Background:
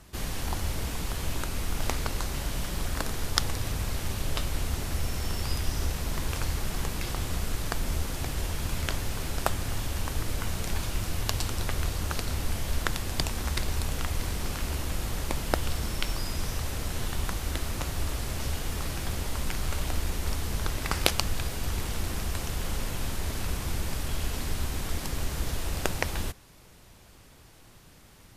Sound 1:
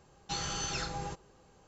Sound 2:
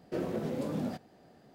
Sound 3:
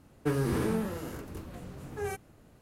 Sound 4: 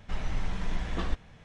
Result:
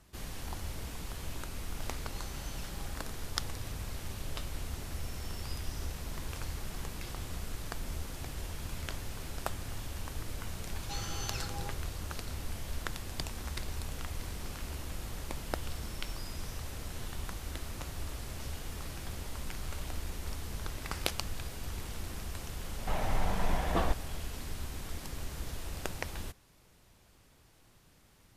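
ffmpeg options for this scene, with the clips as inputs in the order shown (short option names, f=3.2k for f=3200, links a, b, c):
-filter_complex "[1:a]asplit=2[a][b];[0:a]volume=-9dB[c];[4:a]equalizer=f=710:w=0.97:g=11.5[d];[a]atrim=end=1.67,asetpts=PTS-STARTPTS,volume=-16.5dB,afade=t=in:d=0.004:c=hsin,afade=t=out:st=1.666:d=0.004:c=hsin,adelay=1840[e];[b]atrim=end=1.67,asetpts=PTS-STARTPTS,volume=-5.5dB,afade=t=in:d=0.004:c=hsin,afade=t=out:st=1.666:d=0.004:c=hsin,adelay=10600[f];[d]atrim=end=1.44,asetpts=PTS-STARTPTS,volume=-1dB,afade=t=in:d=0.004:c=hsin,afade=t=out:st=1.436:d=0.004:c=hsin,adelay=22780[g];[c][e][f][g]amix=inputs=4:normalize=0"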